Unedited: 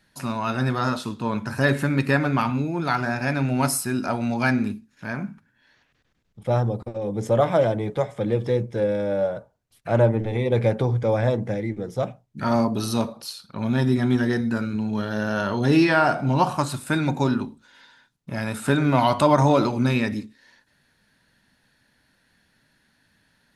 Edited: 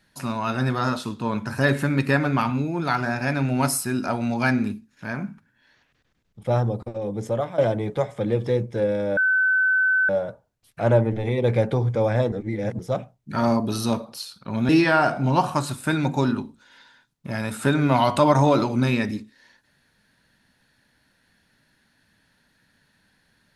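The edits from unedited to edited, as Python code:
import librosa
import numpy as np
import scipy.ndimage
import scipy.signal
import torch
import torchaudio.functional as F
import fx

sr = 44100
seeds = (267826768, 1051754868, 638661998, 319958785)

y = fx.edit(x, sr, fx.fade_out_to(start_s=6.84, length_s=0.74, curve='qsin', floor_db=-15.5),
    fx.insert_tone(at_s=9.17, length_s=0.92, hz=1520.0, db=-16.5),
    fx.reverse_span(start_s=11.4, length_s=0.47),
    fx.cut(start_s=13.77, length_s=1.95), tone=tone)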